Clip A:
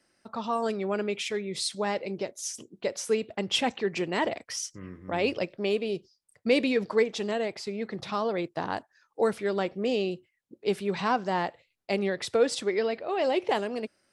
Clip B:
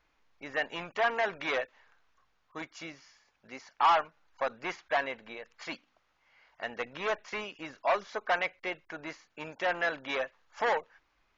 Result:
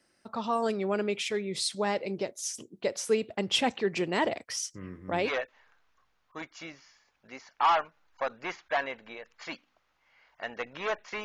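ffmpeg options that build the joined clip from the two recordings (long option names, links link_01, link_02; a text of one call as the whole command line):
ffmpeg -i cue0.wav -i cue1.wav -filter_complex "[0:a]apad=whole_dur=11.24,atrim=end=11.24,atrim=end=5.33,asetpts=PTS-STARTPTS[link_01];[1:a]atrim=start=1.39:end=7.44,asetpts=PTS-STARTPTS[link_02];[link_01][link_02]acrossfade=duration=0.14:curve1=tri:curve2=tri" out.wav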